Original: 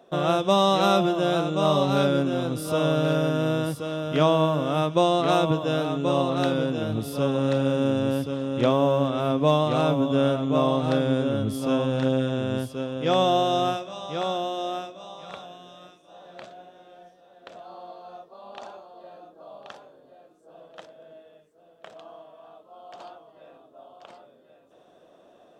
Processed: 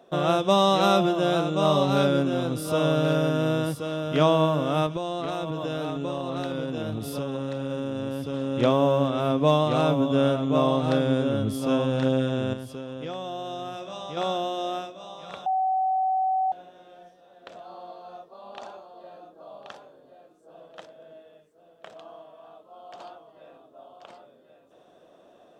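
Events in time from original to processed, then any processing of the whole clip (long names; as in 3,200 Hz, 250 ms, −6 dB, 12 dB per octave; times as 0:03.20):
0:04.86–0:08.34: downward compressor 12 to 1, threshold −25 dBFS
0:12.53–0:14.17: downward compressor, threshold −31 dBFS
0:15.46–0:16.52: beep over 757 Hz −21 dBFS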